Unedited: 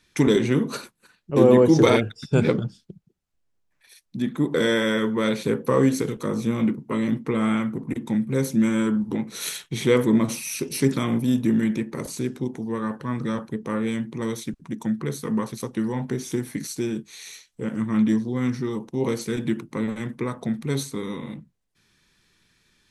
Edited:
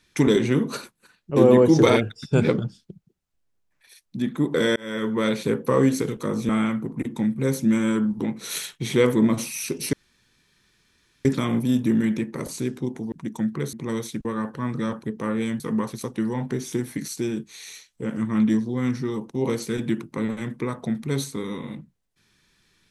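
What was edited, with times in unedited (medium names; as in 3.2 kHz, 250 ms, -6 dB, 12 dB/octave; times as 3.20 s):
4.76–5.13 s: fade in
6.49–7.40 s: delete
10.84 s: insert room tone 1.32 s
12.71–14.06 s: swap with 14.58–15.19 s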